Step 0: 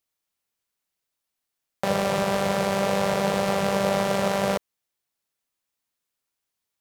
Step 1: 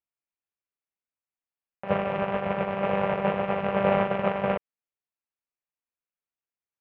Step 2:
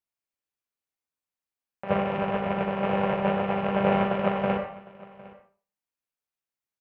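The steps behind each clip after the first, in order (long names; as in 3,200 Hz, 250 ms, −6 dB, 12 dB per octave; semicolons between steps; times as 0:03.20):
Chebyshev low-pass filter 2,700 Hz, order 4; noise gate −22 dBFS, range −15 dB; level +4 dB
single-tap delay 757 ms −21 dB; on a send at −5.5 dB: convolution reverb RT60 0.40 s, pre-delay 53 ms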